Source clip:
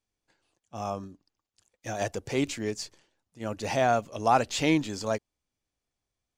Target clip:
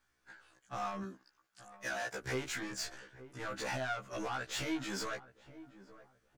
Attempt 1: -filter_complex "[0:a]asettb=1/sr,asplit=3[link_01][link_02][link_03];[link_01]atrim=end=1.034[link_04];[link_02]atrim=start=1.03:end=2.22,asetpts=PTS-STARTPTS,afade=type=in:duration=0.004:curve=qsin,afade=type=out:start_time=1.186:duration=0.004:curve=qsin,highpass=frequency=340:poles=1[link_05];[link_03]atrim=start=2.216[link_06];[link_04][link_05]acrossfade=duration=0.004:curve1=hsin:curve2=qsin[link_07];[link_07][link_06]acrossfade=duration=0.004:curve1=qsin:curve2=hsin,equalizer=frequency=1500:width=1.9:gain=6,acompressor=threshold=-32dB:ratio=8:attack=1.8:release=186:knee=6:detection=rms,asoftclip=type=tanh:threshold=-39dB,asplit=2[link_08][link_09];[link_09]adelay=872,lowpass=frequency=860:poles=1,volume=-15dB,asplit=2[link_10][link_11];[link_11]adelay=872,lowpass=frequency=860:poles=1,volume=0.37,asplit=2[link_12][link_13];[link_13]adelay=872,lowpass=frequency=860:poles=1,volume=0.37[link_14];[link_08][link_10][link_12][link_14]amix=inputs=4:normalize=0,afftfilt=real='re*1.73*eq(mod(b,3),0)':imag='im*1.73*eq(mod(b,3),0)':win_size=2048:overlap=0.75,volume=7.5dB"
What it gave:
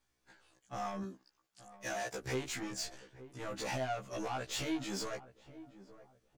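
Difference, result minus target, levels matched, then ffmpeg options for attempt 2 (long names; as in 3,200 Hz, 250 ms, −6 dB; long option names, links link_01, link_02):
2,000 Hz band −3.5 dB
-filter_complex "[0:a]asettb=1/sr,asplit=3[link_01][link_02][link_03];[link_01]atrim=end=1.034[link_04];[link_02]atrim=start=1.03:end=2.22,asetpts=PTS-STARTPTS,afade=type=in:duration=0.004:curve=qsin,afade=type=out:start_time=1.186:duration=0.004:curve=qsin,highpass=frequency=340:poles=1[link_05];[link_03]atrim=start=2.216[link_06];[link_04][link_05]acrossfade=duration=0.004:curve1=hsin:curve2=qsin[link_07];[link_07][link_06]acrossfade=duration=0.004:curve1=qsin:curve2=hsin,equalizer=frequency=1500:width=1.9:gain=16.5,acompressor=threshold=-32dB:ratio=8:attack=1.8:release=186:knee=6:detection=rms,asoftclip=type=tanh:threshold=-39dB,asplit=2[link_08][link_09];[link_09]adelay=872,lowpass=frequency=860:poles=1,volume=-15dB,asplit=2[link_10][link_11];[link_11]adelay=872,lowpass=frequency=860:poles=1,volume=0.37,asplit=2[link_12][link_13];[link_13]adelay=872,lowpass=frequency=860:poles=1,volume=0.37[link_14];[link_08][link_10][link_12][link_14]amix=inputs=4:normalize=0,afftfilt=real='re*1.73*eq(mod(b,3),0)':imag='im*1.73*eq(mod(b,3),0)':win_size=2048:overlap=0.75,volume=7.5dB"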